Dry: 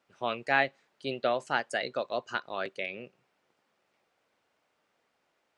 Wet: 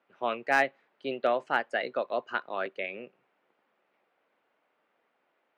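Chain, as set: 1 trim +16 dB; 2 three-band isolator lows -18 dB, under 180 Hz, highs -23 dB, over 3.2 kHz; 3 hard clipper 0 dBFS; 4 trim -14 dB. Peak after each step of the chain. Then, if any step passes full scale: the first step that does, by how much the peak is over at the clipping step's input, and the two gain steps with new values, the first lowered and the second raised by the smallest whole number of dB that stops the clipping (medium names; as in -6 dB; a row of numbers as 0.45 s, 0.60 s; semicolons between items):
+6.0 dBFS, +3.0 dBFS, 0.0 dBFS, -14.0 dBFS; step 1, 3.0 dB; step 1 +13 dB, step 4 -11 dB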